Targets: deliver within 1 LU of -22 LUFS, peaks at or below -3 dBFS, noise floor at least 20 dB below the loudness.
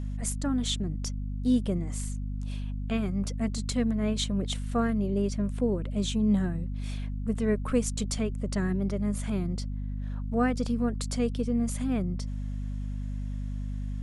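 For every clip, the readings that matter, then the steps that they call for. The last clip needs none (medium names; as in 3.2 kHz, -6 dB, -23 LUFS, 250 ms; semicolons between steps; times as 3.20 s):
hum 50 Hz; highest harmonic 250 Hz; hum level -30 dBFS; loudness -30.0 LUFS; peak level -13.5 dBFS; loudness target -22.0 LUFS
-> de-hum 50 Hz, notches 5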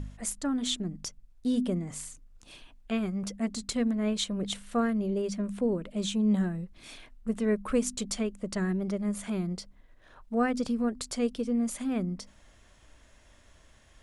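hum not found; loudness -31.0 LUFS; peak level -15.0 dBFS; loudness target -22.0 LUFS
-> trim +9 dB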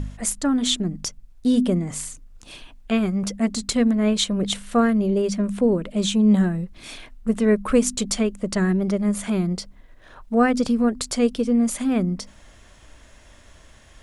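loudness -22.0 LUFS; peak level -6.0 dBFS; noise floor -50 dBFS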